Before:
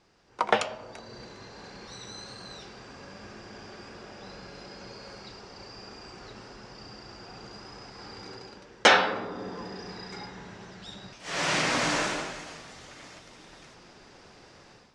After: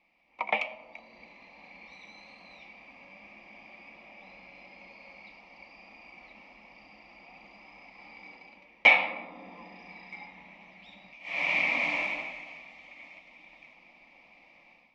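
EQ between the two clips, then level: resonant low-pass 2.3 kHz, resonance Q 14; bass shelf 260 Hz -7.5 dB; static phaser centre 410 Hz, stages 6; -5.0 dB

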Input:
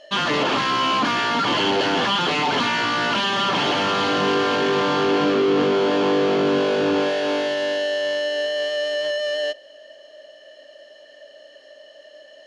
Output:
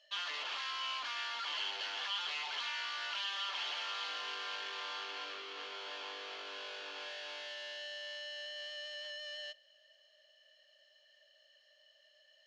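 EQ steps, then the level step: band-pass 530–3900 Hz; differentiator; -5.5 dB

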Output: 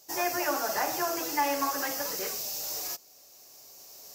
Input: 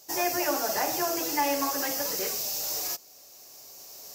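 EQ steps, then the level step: dynamic bell 1.3 kHz, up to +6 dB, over -42 dBFS, Q 1.1; -3.5 dB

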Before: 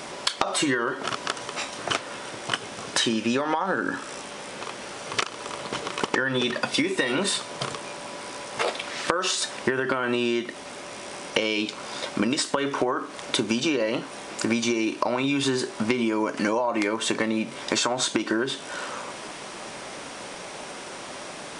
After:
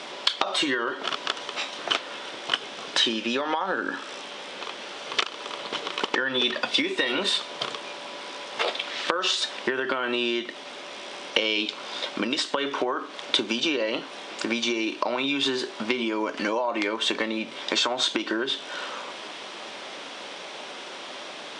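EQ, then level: high-pass 260 Hz 12 dB/octave; low-pass 5.5 kHz 12 dB/octave; peaking EQ 3.4 kHz +7.5 dB 0.73 oct; -1.5 dB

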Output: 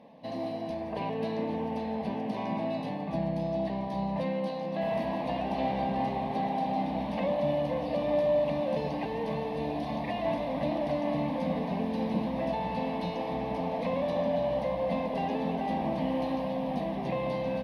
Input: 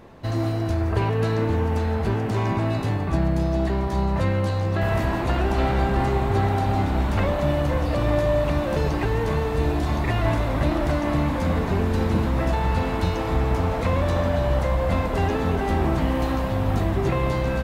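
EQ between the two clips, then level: boxcar filter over 6 samples; high-pass 170 Hz 12 dB/octave; static phaser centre 370 Hz, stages 6; -2.5 dB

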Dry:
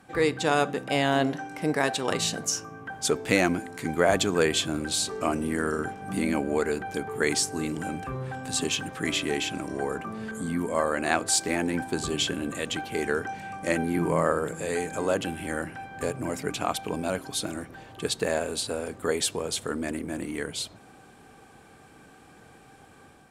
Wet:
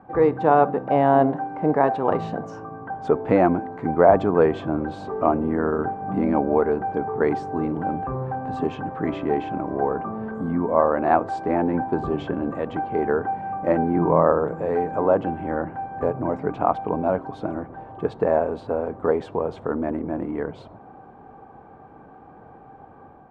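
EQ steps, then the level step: resonant low-pass 900 Hz, resonance Q 1.9; +4.5 dB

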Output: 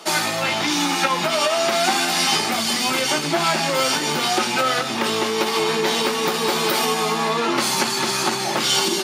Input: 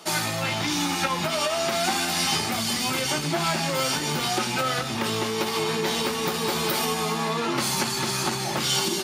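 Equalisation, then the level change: high-pass 230 Hz 12 dB/octave; treble shelf 9 kHz -5.5 dB; +6.0 dB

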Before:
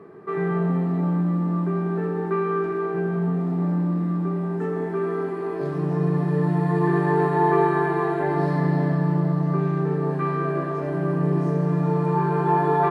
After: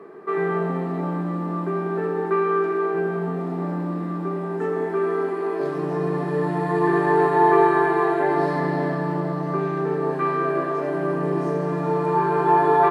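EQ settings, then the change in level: high-pass 290 Hz 12 dB/octave; +4.0 dB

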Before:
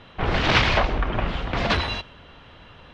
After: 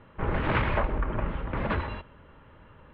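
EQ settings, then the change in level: Butterworth band-stop 720 Hz, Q 7.1; low-pass 2 kHz 12 dB/octave; distance through air 270 m; -4.0 dB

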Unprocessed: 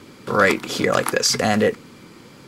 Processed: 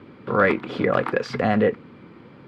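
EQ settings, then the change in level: high-pass 55 Hz; low-pass 11 kHz 12 dB/octave; distance through air 460 m; 0.0 dB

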